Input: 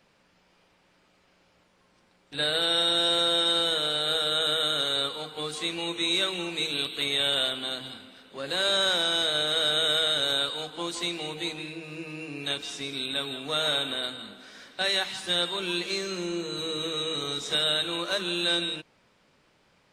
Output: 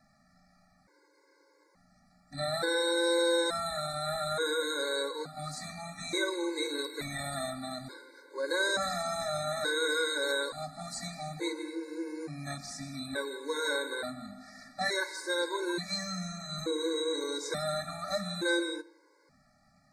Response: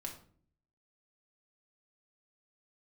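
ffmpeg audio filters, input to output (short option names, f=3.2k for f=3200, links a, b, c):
-filter_complex "[0:a]asuperstop=centerf=3000:order=8:qfactor=1.6,asplit=2[a][b];[1:a]atrim=start_sample=2205,highshelf=f=6.9k:g=-6.5[c];[b][c]afir=irnorm=-1:irlink=0,volume=-6dB[d];[a][d]amix=inputs=2:normalize=0,afftfilt=real='re*gt(sin(2*PI*0.57*pts/sr)*(1-2*mod(floor(b*sr/1024/280),2)),0)':imag='im*gt(sin(2*PI*0.57*pts/sr)*(1-2*mod(floor(b*sr/1024/280),2)),0)':win_size=1024:overlap=0.75"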